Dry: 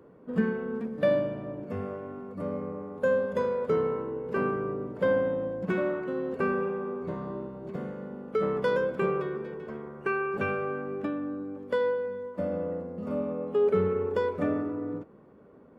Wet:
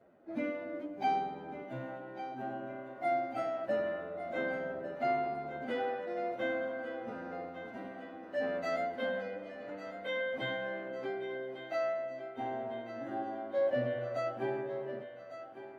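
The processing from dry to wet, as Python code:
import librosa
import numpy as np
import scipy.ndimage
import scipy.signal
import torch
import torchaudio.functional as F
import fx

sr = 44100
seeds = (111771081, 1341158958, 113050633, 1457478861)

y = fx.pitch_bins(x, sr, semitones=5.0)
y = fx.echo_thinned(y, sr, ms=1151, feedback_pct=59, hz=320.0, wet_db=-11.5)
y = F.gain(torch.from_numpy(y), -5.5).numpy()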